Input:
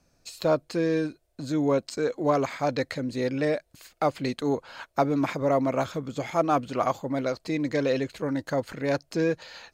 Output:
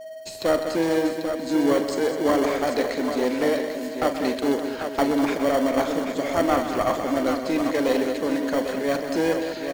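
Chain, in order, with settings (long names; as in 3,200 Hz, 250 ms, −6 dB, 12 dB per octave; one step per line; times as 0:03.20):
one-sided soft clipper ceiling −21.5 dBFS
Butterworth high-pass 200 Hz 36 dB per octave
steady tone 640 Hz −40 dBFS
in parallel at −8.5 dB: decimation without filtering 35×
on the sum: multi-tap delay 42/127/204/408/560/792 ms −11/−11/−9.5/−13.5/−15/−7.5 dB
level +3 dB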